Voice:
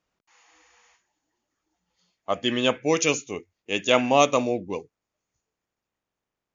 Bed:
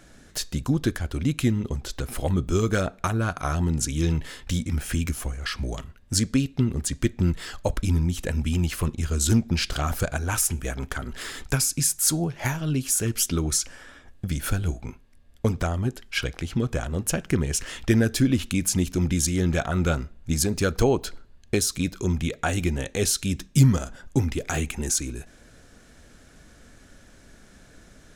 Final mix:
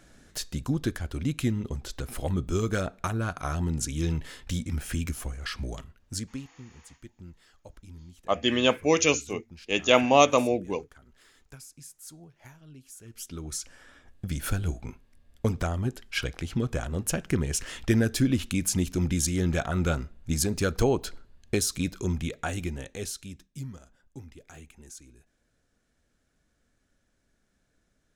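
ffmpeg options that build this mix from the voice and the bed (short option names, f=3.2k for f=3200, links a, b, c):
-filter_complex "[0:a]adelay=6000,volume=0dB[a];[1:a]volume=16.5dB,afade=t=out:st=5.65:d=0.9:silence=0.105925,afade=t=in:st=13.03:d=1.47:silence=0.0891251,afade=t=out:st=21.9:d=1.6:silence=0.11885[b];[a][b]amix=inputs=2:normalize=0"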